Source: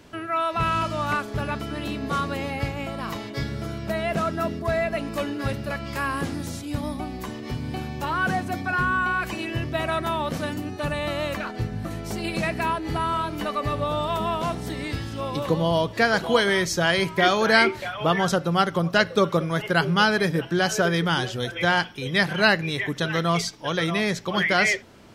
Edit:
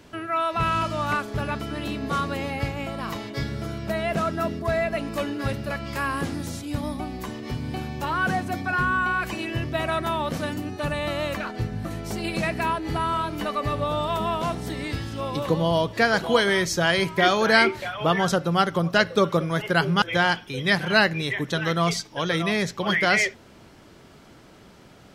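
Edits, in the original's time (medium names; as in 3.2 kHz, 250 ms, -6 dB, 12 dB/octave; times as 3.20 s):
20.02–21.50 s: delete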